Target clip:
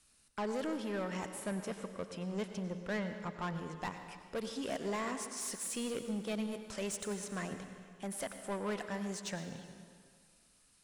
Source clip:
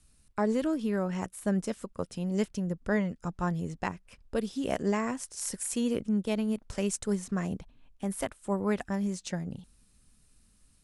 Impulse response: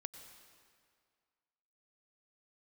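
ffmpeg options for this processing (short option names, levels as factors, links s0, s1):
-filter_complex "[0:a]asettb=1/sr,asplit=3[s0][s1][s2];[s0]atrim=end=1.514[s3];[s1]atrim=start=1.51:end=3.76,asetpts=PTS-STARTPTS,afade=t=in:d=0.004:c=qsin,afade=t=out:st=2.246:d=0.004:c=qsin,bass=f=250:g=1,treble=f=4000:g=-8[s4];[s2]atrim=start=3.756[s5];[s3][s4]acrossfade=d=0.004:c1=hsin:c2=qsin[s6];[s6][s5]acrossfade=d=0.004:c1=qsin:c2=hsin,asplit=2[s7][s8];[s8]highpass=f=720:p=1,volume=8.91,asoftclip=type=tanh:threshold=0.112[s9];[s7][s9]amix=inputs=2:normalize=0,lowpass=f=7600:p=1,volume=0.501[s10];[1:a]atrim=start_sample=2205[s11];[s10][s11]afir=irnorm=-1:irlink=0,volume=0.473"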